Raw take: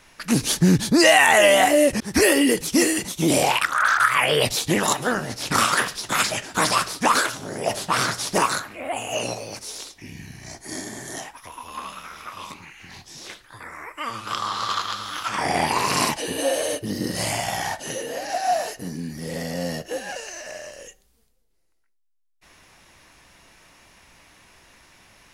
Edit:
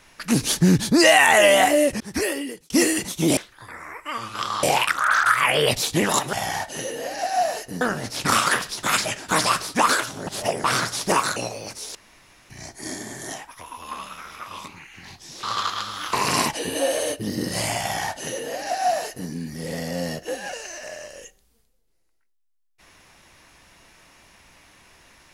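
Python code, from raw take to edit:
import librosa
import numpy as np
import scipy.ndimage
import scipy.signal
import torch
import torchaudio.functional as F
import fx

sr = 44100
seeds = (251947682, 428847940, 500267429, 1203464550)

y = fx.edit(x, sr, fx.fade_out_span(start_s=1.62, length_s=1.08),
    fx.reverse_span(start_s=7.53, length_s=0.37),
    fx.cut(start_s=8.62, length_s=0.6),
    fx.room_tone_fill(start_s=9.81, length_s=0.55),
    fx.move(start_s=13.29, length_s=1.26, to_s=3.37),
    fx.cut(start_s=15.25, length_s=0.51),
    fx.duplicate(start_s=17.44, length_s=1.48, to_s=5.07), tone=tone)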